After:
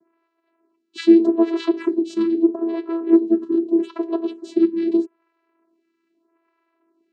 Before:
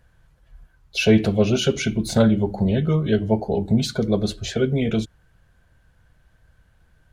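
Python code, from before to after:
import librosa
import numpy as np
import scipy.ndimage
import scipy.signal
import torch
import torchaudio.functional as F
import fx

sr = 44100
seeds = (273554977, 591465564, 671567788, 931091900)

y = fx.vocoder(x, sr, bands=8, carrier='saw', carrier_hz=332.0)
y = fx.small_body(y, sr, hz=(210.0, 390.0, 1100.0, 3900.0), ring_ms=35, db=13)
y = fx.stagger_phaser(y, sr, hz=0.8)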